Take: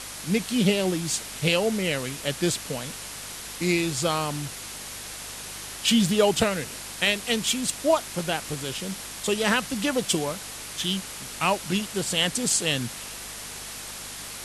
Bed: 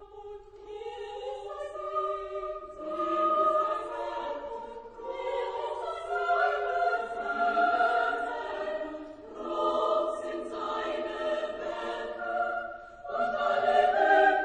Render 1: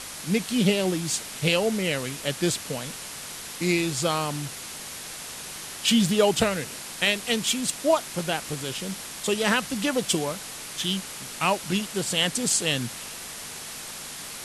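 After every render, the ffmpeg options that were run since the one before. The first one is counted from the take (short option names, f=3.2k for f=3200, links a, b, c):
-af "bandreject=f=50:t=h:w=4,bandreject=f=100:t=h:w=4"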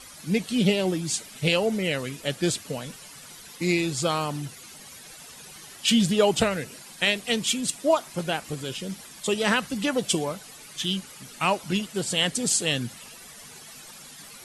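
-af "afftdn=nr=12:nf=-38"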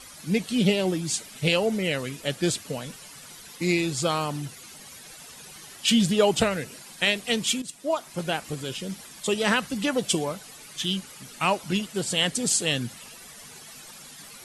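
-filter_complex "[0:a]asplit=2[a][b];[a]atrim=end=7.62,asetpts=PTS-STARTPTS,afade=t=out:st=7.616:d=0.004:c=hsin:silence=0.211349[c];[b]atrim=start=7.62,asetpts=PTS-STARTPTS,afade=t=in:d=0.67:silence=0.211349[d];[c][d]concat=n=2:v=0:a=1"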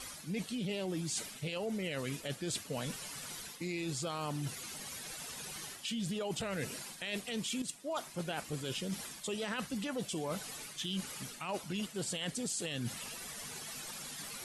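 -af "alimiter=limit=-20dB:level=0:latency=1:release=18,areverse,acompressor=threshold=-35dB:ratio=6,areverse"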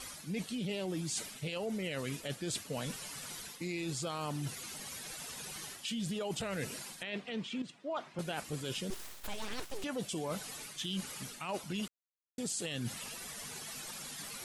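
-filter_complex "[0:a]asettb=1/sr,asplit=3[a][b][c];[a]atrim=end=7.034[d];[b]atrim=start=7.03:end=8.19,asetpts=PTS-STARTPTS,afade=t=in:d=0.004:c=qsin,afade=t=out:st=1.156:d=0.004:c=qsin,highpass=110,lowpass=2.9k[e];[c]atrim=start=8.186[f];[d][e]acrossfade=d=0.004:c1=hsin:c2=qsin[g];[g][f]acrossfade=d=0.004:c1=qsin:c2=hsin,asettb=1/sr,asplit=3[h][i][j];[h]atrim=end=8.904[k];[i]atrim=start=8.9:end=9.84,asetpts=PTS-STARTPTS,afade=t=in:d=0.004:c=qsin,afade=t=out:st=0.936:d=0.004:c=qsin,aeval=exprs='abs(val(0))':c=same[l];[j]atrim=start=9.836[m];[k][l]acrossfade=d=0.004:c1=hsin:c2=qsin[n];[n][m]acrossfade=d=0.004:c1=qsin:c2=hsin,asplit=3[o][p][q];[o]atrim=end=11.88,asetpts=PTS-STARTPTS,afade=t=out:st=11.876:d=0.004:c=hsin[r];[p]atrim=start=11.88:end=12.38,asetpts=PTS-STARTPTS,volume=0[s];[q]atrim=start=12.38,asetpts=PTS-STARTPTS,afade=t=in:d=0.004:c=hsin[t];[r][s][t]concat=n=3:v=0:a=1"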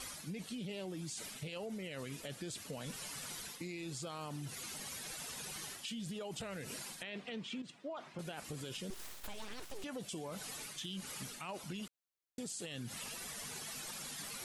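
-af "alimiter=level_in=7.5dB:limit=-24dB:level=0:latency=1:release=72,volume=-7.5dB,acompressor=threshold=-40dB:ratio=6"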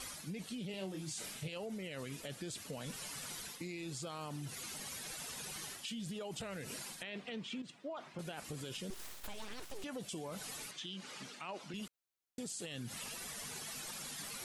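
-filter_complex "[0:a]asettb=1/sr,asplit=3[a][b][c];[a]atrim=end=0.714[d];[b]atrim=start=0.71:end=1.48,asetpts=PTS-STARTPTS,afade=t=in:d=0.004:c=qsin,afade=t=out:st=0.766:d=0.004:c=qsin,asplit=2[e][f];[f]adelay=26,volume=-5.5dB[g];[e][g]amix=inputs=2:normalize=0,atrim=end_sample=33957[h];[c]atrim=start=1.476[i];[d][h]acrossfade=d=0.004:c1=hsin:c2=qsin[j];[j][i]acrossfade=d=0.004:c1=qsin:c2=hsin,asettb=1/sr,asplit=3[k][l][m];[k]atrim=end=10.714[n];[l]atrim=start=10.71:end=11.74,asetpts=PTS-STARTPTS,afade=t=in:d=0.004:c=qsin,afade=t=out:st=1.026:d=0.004:c=qsin,highpass=210,lowpass=5.5k[o];[m]atrim=start=11.736[p];[n][o]acrossfade=d=0.004:c1=hsin:c2=qsin[q];[q][p]acrossfade=d=0.004:c1=qsin:c2=hsin"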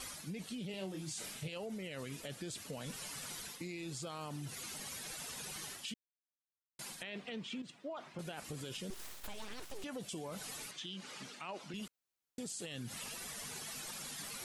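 -filter_complex "[0:a]asplit=3[a][b][c];[a]atrim=end=5.94,asetpts=PTS-STARTPTS,afade=t=out:st=5.936:d=0.004:c=hsin[d];[b]atrim=start=5.94:end=6.79,asetpts=PTS-STARTPTS,volume=0[e];[c]atrim=start=6.79,asetpts=PTS-STARTPTS,afade=t=in:d=0.004:c=hsin[f];[d][e][f]concat=n=3:v=0:a=1"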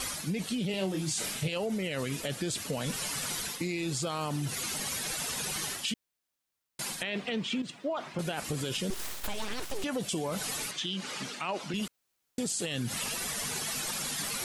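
-af "volume=11dB"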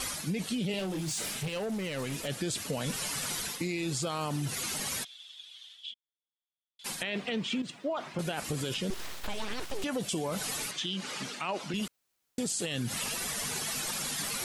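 -filter_complex "[0:a]asettb=1/sr,asplit=3[a][b][c];[a]atrim=end=0.794[d];[b]atrim=start=0.79:end=2.28,asetpts=PTS-STARTPTS,afade=t=in:d=0.004:c=qsin,afade=t=out:st=1.486:d=0.004:c=qsin,asoftclip=type=hard:threshold=-30.5dB[e];[c]atrim=start=2.276[f];[d][e]acrossfade=d=0.004:c1=hsin:c2=qsin[g];[g][f]acrossfade=d=0.004:c1=qsin:c2=hsin,asplit=3[h][i][j];[h]afade=t=out:st=5.03:d=0.02[k];[i]bandpass=f=3.4k:t=q:w=14,afade=t=in:st=5.03:d=0.02,afade=t=out:st=6.84:d=0.02[l];[j]afade=t=in:st=6.84:d=0.02[m];[k][l][m]amix=inputs=3:normalize=0,asettb=1/sr,asplit=3[n][o][p];[n]atrim=end=8.744[q];[o]atrim=start=8.74:end=9.82,asetpts=PTS-STARTPTS,afade=t=in:d=0.004:c=qsin,afade=t=out:st=1.076:d=0.004:c=qsin,acrossover=split=5500[r][s];[s]acompressor=threshold=-48dB:ratio=4:attack=1:release=60[t];[r][t]amix=inputs=2:normalize=0[u];[p]atrim=start=9.816[v];[q][u]acrossfade=d=0.004:c1=hsin:c2=qsin[w];[w][v]acrossfade=d=0.004:c1=qsin:c2=hsin"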